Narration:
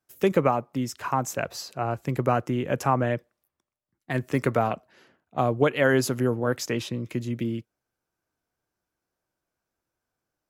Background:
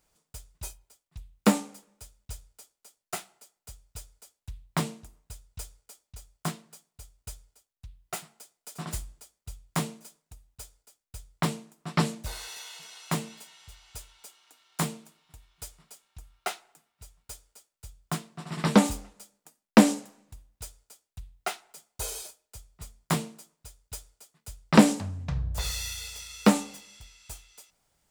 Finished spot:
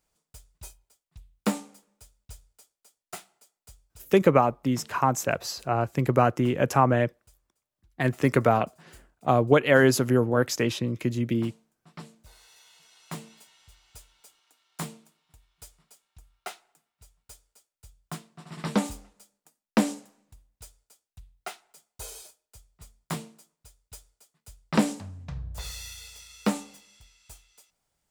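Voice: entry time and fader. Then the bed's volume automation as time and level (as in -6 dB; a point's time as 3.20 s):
3.90 s, +2.5 dB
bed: 3.85 s -5 dB
4.19 s -18.5 dB
12.13 s -18.5 dB
13.39 s -6 dB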